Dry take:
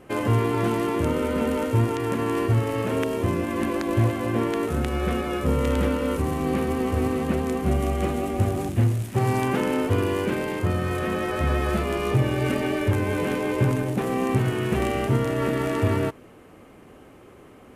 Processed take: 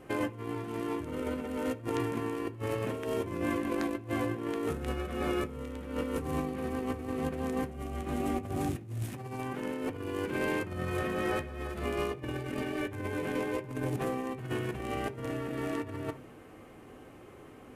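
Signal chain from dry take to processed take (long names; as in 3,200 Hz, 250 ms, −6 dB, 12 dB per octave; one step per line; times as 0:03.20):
compressor whose output falls as the input rises −27 dBFS, ratio −0.5
on a send: convolution reverb RT60 0.45 s, pre-delay 3 ms, DRR 7.5 dB
on the sum: level −7.5 dB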